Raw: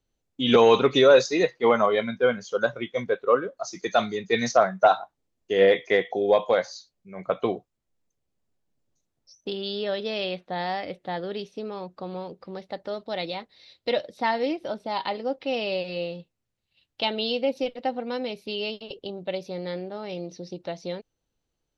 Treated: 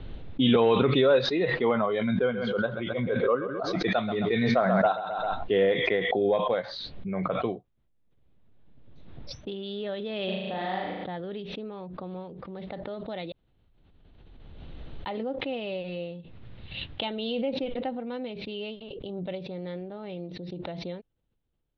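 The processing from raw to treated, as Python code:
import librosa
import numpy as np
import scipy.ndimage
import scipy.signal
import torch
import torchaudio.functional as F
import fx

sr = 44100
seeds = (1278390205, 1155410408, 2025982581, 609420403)

y = fx.echo_feedback(x, sr, ms=131, feedback_pct=28, wet_db=-12, at=(2.16, 5.59))
y = fx.room_flutter(y, sr, wall_m=6.4, rt60_s=1.2, at=(10.27, 11.03), fade=0.02)
y = fx.edit(y, sr, fx.room_tone_fill(start_s=13.32, length_s=1.74), tone=tone)
y = scipy.signal.sosfilt(scipy.signal.ellip(4, 1.0, 60, 3700.0, 'lowpass', fs=sr, output='sos'), y)
y = fx.low_shelf(y, sr, hz=290.0, db=10.0)
y = fx.pre_swell(y, sr, db_per_s=22.0)
y = F.gain(torch.from_numpy(y), -7.5).numpy()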